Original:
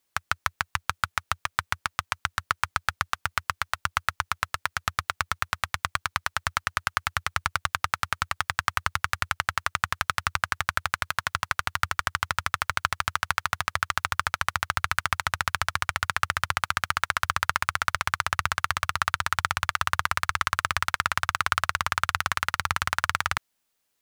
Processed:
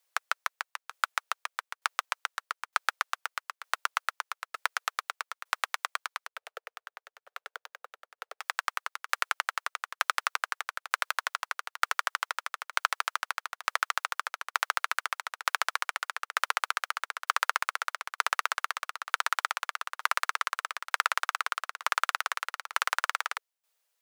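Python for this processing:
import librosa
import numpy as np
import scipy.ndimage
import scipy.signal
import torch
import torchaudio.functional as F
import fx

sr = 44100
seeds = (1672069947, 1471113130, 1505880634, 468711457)

y = fx.median_filter(x, sr, points=41, at=(6.26, 8.4), fade=0.02)
y = scipy.signal.sosfilt(scipy.signal.butter(12, 440.0, 'highpass', fs=sr, output='sos'), y)
y = fx.tremolo_shape(y, sr, shape='saw_down', hz=1.1, depth_pct=85)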